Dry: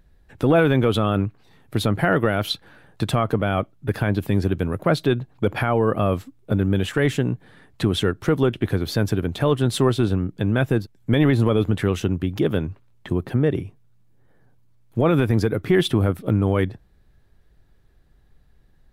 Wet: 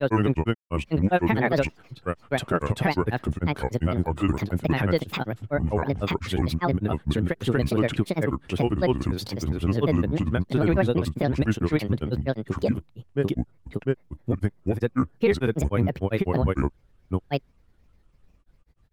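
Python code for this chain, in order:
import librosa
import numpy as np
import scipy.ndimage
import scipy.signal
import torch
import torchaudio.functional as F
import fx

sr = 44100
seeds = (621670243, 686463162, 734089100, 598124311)

y = fx.granulator(x, sr, seeds[0], grain_ms=100.0, per_s=20.0, spray_ms=944.0, spread_st=7)
y = y * librosa.db_to_amplitude(-2.0)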